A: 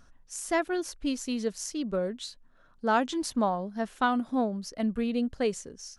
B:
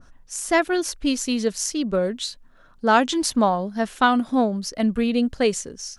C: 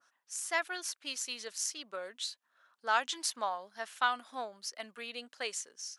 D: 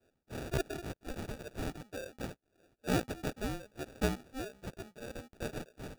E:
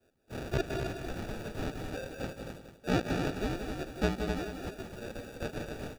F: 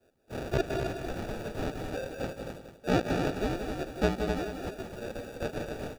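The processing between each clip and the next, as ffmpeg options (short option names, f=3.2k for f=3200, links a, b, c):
-af "adynamicequalizer=threshold=0.0112:dfrequency=1700:dqfactor=0.7:tfrequency=1700:tqfactor=0.7:attack=5:release=100:ratio=0.375:range=2:mode=boostabove:tftype=highshelf,volume=7.5dB"
-af "highpass=1k,volume=-8.5dB"
-af "acrusher=samples=42:mix=1:aa=0.000001,volume=-1.5dB"
-filter_complex "[0:a]asplit=2[a][b];[b]aecho=0:1:166.2|259.5:0.316|0.501[c];[a][c]amix=inputs=2:normalize=0,acrossover=split=6100[d][e];[e]acompressor=threshold=-54dB:ratio=4:attack=1:release=60[f];[d][f]amix=inputs=2:normalize=0,asplit=2[g][h];[h]aecho=0:1:185|370|555:0.376|0.105|0.0295[i];[g][i]amix=inputs=2:normalize=0,volume=2dB"
-af "equalizer=f=590:t=o:w=1.5:g=4,volume=1dB"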